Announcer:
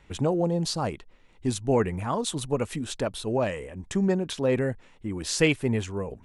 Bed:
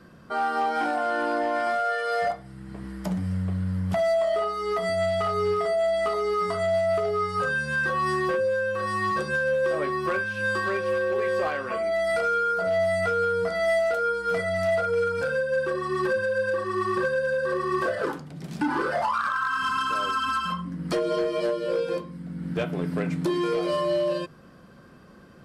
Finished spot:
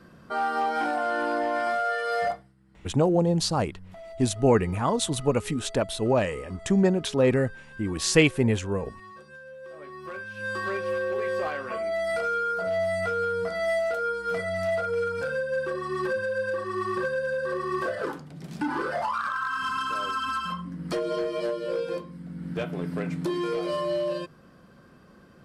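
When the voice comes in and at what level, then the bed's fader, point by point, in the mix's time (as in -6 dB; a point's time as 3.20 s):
2.75 s, +3.0 dB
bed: 2.33 s -1 dB
2.55 s -20.5 dB
9.55 s -20.5 dB
10.68 s -3 dB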